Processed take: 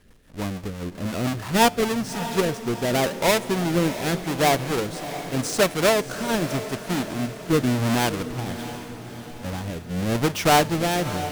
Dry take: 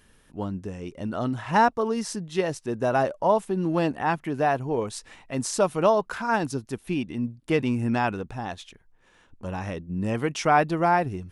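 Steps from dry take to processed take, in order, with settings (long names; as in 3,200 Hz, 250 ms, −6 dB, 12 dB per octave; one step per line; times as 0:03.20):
each half-wave held at its own peak
tuned comb filter 89 Hz, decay 1.3 s, harmonics all, mix 40%
rotating-speaker cabinet horn 6 Hz, later 0.85 Hz, at 0:01.43
feedback delay with all-pass diffusion 665 ms, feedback 52%, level −11.5 dB
level +4 dB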